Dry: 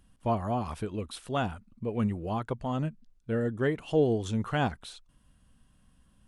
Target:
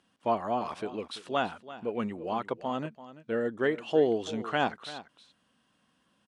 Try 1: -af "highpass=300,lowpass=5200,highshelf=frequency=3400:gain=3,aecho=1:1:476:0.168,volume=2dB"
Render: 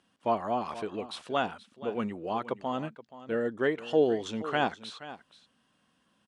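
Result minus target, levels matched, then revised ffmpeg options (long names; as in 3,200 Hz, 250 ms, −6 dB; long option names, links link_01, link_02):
echo 139 ms late
-af "highpass=300,lowpass=5200,highshelf=frequency=3400:gain=3,aecho=1:1:337:0.168,volume=2dB"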